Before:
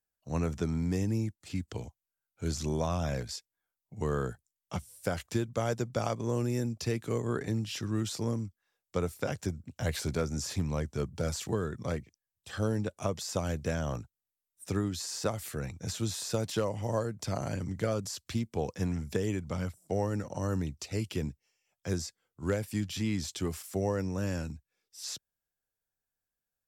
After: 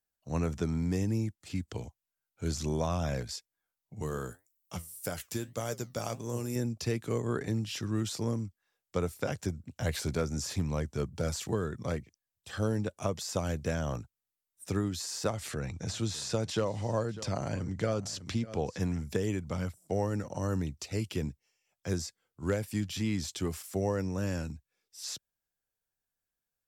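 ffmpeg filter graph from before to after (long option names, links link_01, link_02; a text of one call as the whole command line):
ffmpeg -i in.wav -filter_complex "[0:a]asettb=1/sr,asplit=3[link_01][link_02][link_03];[link_01]atrim=end=4.024[link_04];[link_02]atrim=start=4.02:end=6.56,asetpts=PTS-STARTPTS,afade=type=in:duration=0.004:curve=qsin,afade=type=out:start_time=2.536:duration=0.004:curve=qsin,aemphasis=mode=production:type=50fm,flanger=delay=6.5:depth=5.9:regen=73:speed=1.8:shape=sinusoidal[link_05];[link_03]atrim=start=6.556[link_06];[link_04][link_05]acrossfade=duration=0.004:curve1=hsin:curve2=qsin[link_07];[link_07][link_06]acrossfade=duration=0.004:curve1=qsin:curve2=hsin,asettb=1/sr,asplit=3[link_08][link_09][link_10];[link_08]atrim=end=15.304[link_11];[link_09]atrim=start=15.3:end=18.8,asetpts=PTS-STARTPTS,afade=type=in:duration=0.004:curve=qsin,afade=type=out:start_time=3.496:duration=0.004:curve=qsin,lowpass=7600,aecho=1:1:599:0.106,atrim=end_sample=154350,acompressor=mode=upward:threshold=-32dB:ratio=2.5:attack=3.2:release=140:knee=2.83:detection=peak[link_12];[link_10]atrim=start=18.796[link_13];[link_11][link_12]acrossfade=duration=0.004:curve1=hsin:curve2=qsin[link_14];[link_14][link_13]acrossfade=duration=0.004:curve1=qsin:curve2=hsin" out.wav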